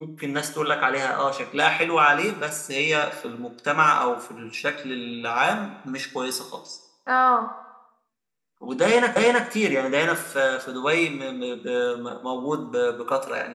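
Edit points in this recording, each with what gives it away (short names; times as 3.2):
9.16 repeat of the last 0.32 s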